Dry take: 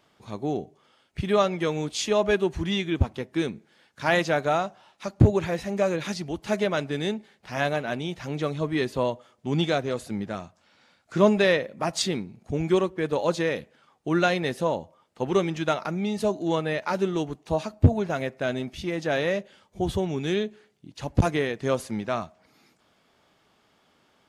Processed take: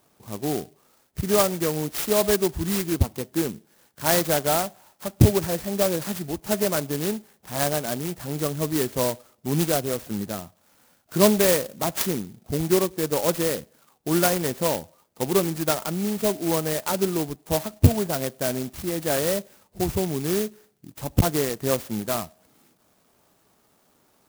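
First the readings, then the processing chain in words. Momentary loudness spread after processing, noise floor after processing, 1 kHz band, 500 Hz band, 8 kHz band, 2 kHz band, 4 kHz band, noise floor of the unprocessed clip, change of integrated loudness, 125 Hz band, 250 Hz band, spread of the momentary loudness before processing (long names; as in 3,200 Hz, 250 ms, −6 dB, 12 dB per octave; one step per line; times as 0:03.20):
11 LU, −64 dBFS, 0.0 dB, +1.0 dB, +11.5 dB, −3.0 dB, +2.0 dB, −65 dBFS, +2.0 dB, +1.5 dB, +1.5 dB, 11 LU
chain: converter with an unsteady clock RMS 0.12 ms
level +1.5 dB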